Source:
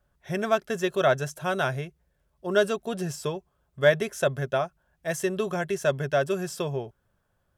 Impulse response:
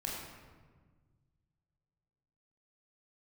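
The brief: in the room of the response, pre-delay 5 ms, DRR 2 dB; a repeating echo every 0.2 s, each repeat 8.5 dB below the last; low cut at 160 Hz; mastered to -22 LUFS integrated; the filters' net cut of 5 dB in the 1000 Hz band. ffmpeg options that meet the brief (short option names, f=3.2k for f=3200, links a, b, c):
-filter_complex "[0:a]highpass=160,equalizer=f=1k:t=o:g=-8.5,aecho=1:1:200|400|600|800:0.376|0.143|0.0543|0.0206,asplit=2[a][b];[1:a]atrim=start_sample=2205,adelay=5[c];[b][c]afir=irnorm=-1:irlink=0,volume=-4dB[d];[a][d]amix=inputs=2:normalize=0,volume=4.5dB"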